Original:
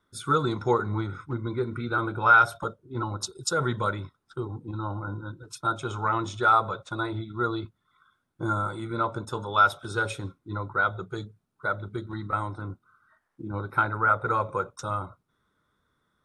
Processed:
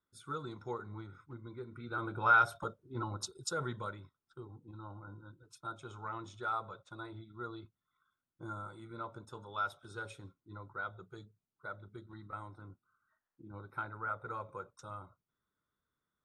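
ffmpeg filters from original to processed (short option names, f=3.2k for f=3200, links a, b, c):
-af "volume=-8dB,afade=t=in:st=1.73:d=0.48:silence=0.354813,afade=t=out:st=3.23:d=0.76:silence=0.398107"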